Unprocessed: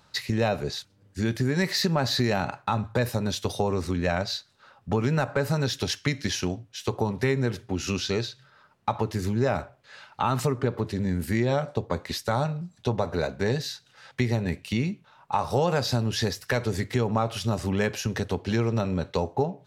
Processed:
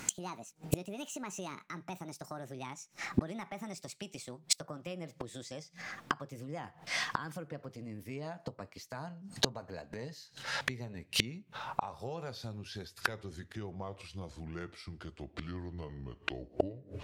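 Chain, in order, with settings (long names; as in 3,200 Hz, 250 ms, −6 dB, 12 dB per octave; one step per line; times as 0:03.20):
gliding playback speed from 162% → 69%
gate with flip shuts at −27 dBFS, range −31 dB
level +13.5 dB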